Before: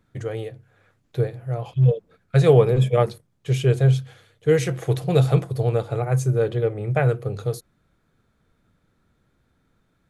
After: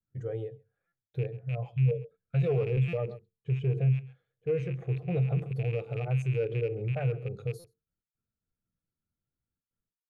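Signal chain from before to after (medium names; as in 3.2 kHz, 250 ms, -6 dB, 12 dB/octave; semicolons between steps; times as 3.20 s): rattle on loud lows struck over -24 dBFS, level -16 dBFS; saturation -10.5 dBFS, distortion -17 dB; delay 134 ms -17.5 dB; gate with hold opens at -56 dBFS; hum notches 50/100/150/200/250/300/350/400/450 Hz; peak limiter -19.5 dBFS, peak gain reduction 11 dB; 2.97–5.39 s: low-pass 2.4 kHz 6 dB/octave; buffer glitch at 0.87/2.88/7.59 s, samples 256, times 8; spectral contrast expander 1.5:1; trim +1.5 dB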